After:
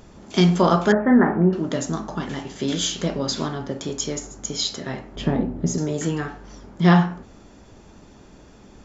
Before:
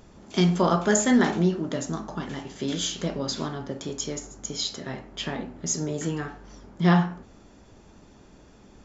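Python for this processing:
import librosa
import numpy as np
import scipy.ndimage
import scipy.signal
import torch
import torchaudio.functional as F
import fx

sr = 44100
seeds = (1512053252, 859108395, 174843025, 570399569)

y = fx.steep_lowpass(x, sr, hz=1800.0, slope=36, at=(0.92, 1.53))
y = fx.tilt_shelf(y, sr, db=9.0, hz=860.0, at=(5.16, 5.78))
y = F.gain(torch.from_numpy(y), 4.5).numpy()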